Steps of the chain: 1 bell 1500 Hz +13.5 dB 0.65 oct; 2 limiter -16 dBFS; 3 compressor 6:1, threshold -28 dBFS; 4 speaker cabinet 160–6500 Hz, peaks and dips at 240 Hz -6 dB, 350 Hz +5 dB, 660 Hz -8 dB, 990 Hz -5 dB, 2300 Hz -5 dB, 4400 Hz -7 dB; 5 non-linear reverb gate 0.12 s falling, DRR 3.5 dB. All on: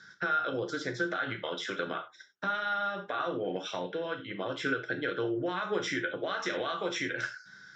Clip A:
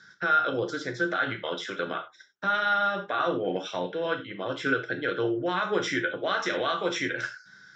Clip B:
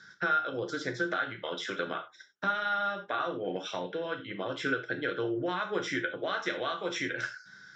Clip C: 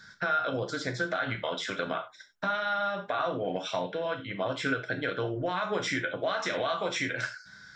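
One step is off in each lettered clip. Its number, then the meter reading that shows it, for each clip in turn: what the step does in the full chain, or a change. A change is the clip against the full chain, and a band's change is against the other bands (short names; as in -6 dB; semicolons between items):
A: 3, mean gain reduction 3.5 dB; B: 2, mean gain reduction 2.0 dB; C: 4, 125 Hz band +3.0 dB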